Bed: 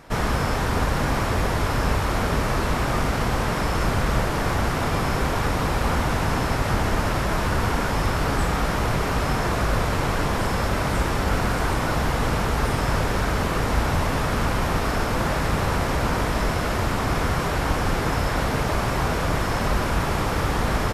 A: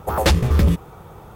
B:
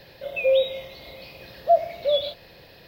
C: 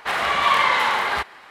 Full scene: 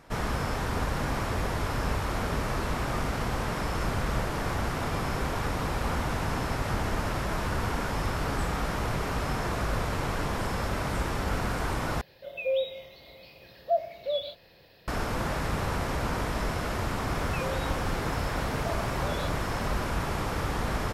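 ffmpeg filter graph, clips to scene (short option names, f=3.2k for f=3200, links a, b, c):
-filter_complex "[2:a]asplit=2[a][b];[0:a]volume=-7dB[c];[b]acompressor=threshold=-26dB:ratio=6:attack=3.2:release=140:knee=1:detection=peak[d];[c]asplit=2[e][f];[e]atrim=end=12.014[g];[a]atrim=end=2.87,asetpts=PTS-STARTPTS,volume=-8dB[h];[f]atrim=start=14.876[i];[d]atrim=end=2.87,asetpts=PTS-STARTPTS,volume=-9dB,afade=t=in:d=0.004:c=hsin,afade=t=out:st=2.866:d=0.004:c=hsin,adelay=16970[j];[g][h]acrossfade=d=0.004:c1=hsin:c2=hsin[k];[k][i]acrossfade=d=0.004:c1=hsin:c2=hsin[l];[l][j]amix=inputs=2:normalize=0"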